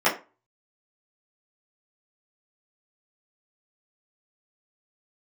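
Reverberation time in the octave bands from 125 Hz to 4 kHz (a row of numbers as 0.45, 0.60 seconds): 0.35, 0.30, 0.30, 0.30, 0.30, 0.20 seconds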